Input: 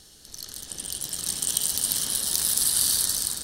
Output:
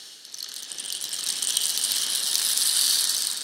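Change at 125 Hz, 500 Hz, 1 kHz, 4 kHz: below −15 dB, −3.5 dB, +1.0 dB, +5.5 dB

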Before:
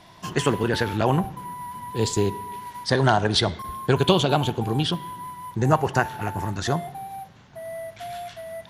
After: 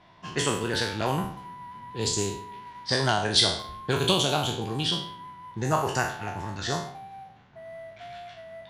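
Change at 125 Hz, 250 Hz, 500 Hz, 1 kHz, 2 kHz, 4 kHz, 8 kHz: −7.0, −6.5, −5.5, −5.0, −2.5, +2.0, +3.0 decibels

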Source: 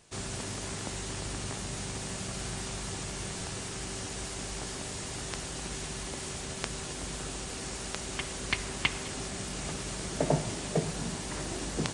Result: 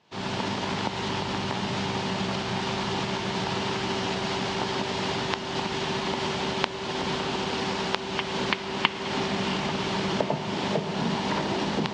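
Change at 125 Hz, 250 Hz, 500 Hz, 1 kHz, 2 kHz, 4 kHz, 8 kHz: +4.5, +9.0, +8.5, +12.5, +8.0, +8.5, −6.0 decibels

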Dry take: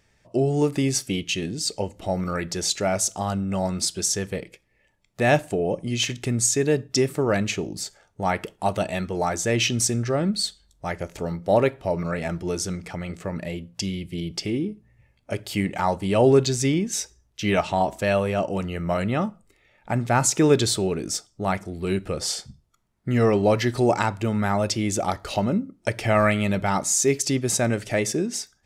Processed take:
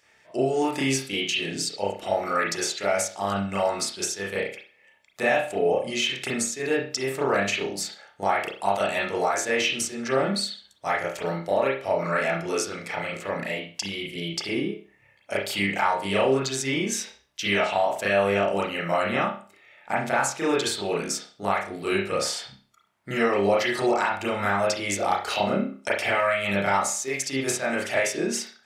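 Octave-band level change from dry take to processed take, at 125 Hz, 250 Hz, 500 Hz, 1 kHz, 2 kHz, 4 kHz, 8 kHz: −10.0, −5.0, −1.0, +1.5, +4.0, 0.0, −4.5 decibels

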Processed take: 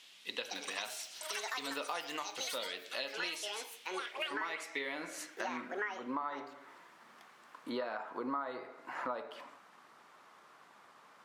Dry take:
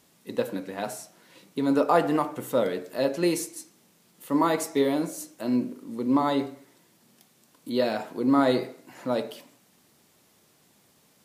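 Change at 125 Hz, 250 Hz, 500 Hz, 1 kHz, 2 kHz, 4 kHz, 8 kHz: −27.0, −20.5, −16.5, −10.5, −1.5, −1.0, −6.0 decibels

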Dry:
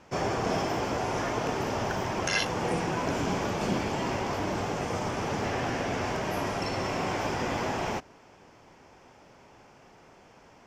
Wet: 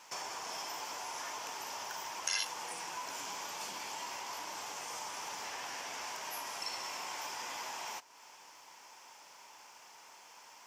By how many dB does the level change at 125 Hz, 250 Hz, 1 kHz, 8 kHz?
−33.0, −27.0, −10.0, 0.0 decibels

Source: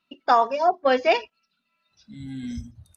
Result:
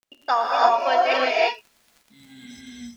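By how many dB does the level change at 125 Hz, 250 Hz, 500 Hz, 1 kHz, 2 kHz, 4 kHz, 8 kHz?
below −15 dB, −5.5 dB, +0.5 dB, +2.0 dB, +4.0 dB, +5.0 dB, can't be measured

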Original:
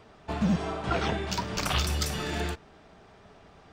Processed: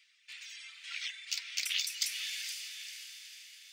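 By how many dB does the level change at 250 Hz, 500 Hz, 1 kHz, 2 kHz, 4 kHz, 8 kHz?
below −40 dB, below −40 dB, −30.5 dB, −4.5 dB, −0.5 dB, 0.0 dB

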